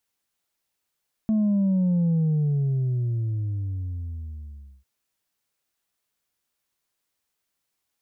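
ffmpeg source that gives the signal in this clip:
-f lavfi -i "aevalsrc='0.112*clip((3.55-t)/2.72,0,1)*tanh(1.26*sin(2*PI*220*3.55/log(65/220)*(exp(log(65/220)*t/3.55)-1)))/tanh(1.26)':d=3.55:s=44100"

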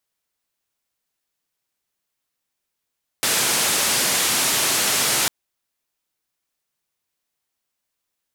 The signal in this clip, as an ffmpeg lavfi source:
-f lavfi -i "anoisesrc=c=white:d=2.05:r=44100:seed=1,highpass=f=120,lowpass=f=11000,volume=-12.2dB"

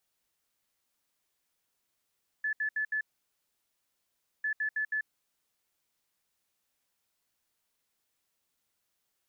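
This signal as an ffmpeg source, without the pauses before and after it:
-f lavfi -i "aevalsrc='0.0398*sin(2*PI*1730*t)*clip(min(mod(mod(t,2),0.16),0.09-mod(mod(t,2),0.16))/0.005,0,1)*lt(mod(t,2),0.64)':d=4:s=44100"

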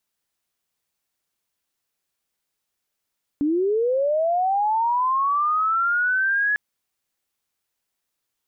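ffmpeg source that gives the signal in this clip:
-f lavfi -i "aevalsrc='0.126*sin(2*PI*(280*t+1420*t*t/(2*3.15)))':d=3.15:s=44100"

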